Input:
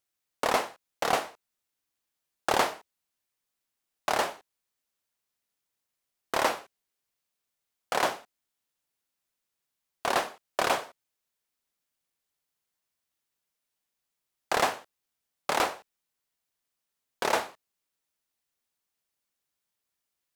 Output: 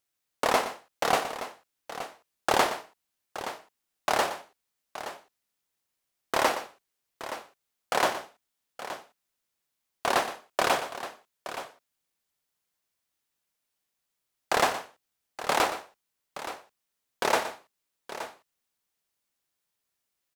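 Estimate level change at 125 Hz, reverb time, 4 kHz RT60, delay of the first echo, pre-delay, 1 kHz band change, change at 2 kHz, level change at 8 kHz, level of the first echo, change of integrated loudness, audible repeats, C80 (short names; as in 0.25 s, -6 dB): +2.0 dB, none, none, 0.119 s, none, +2.0 dB, +2.0 dB, +2.0 dB, -12.5 dB, 0.0 dB, 2, none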